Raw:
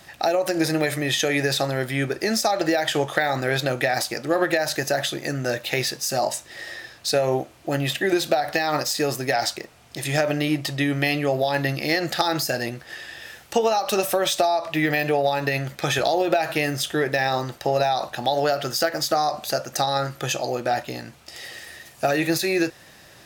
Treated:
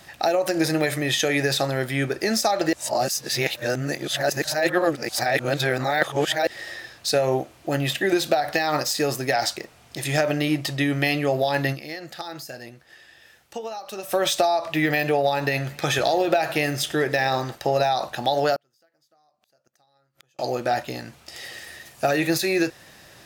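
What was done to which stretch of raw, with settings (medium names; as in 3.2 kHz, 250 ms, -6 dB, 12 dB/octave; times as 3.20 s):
2.73–6.47 s: reverse
11.72–14.15 s: dip -12.5 dB, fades 0.43 s exponential
15.24–17.55 s: modulated delay 100 ms, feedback 56%, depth 85 cents, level -20.5 dB
18.55–20.39 s: inverted gate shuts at -20 dBFS, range -42 dB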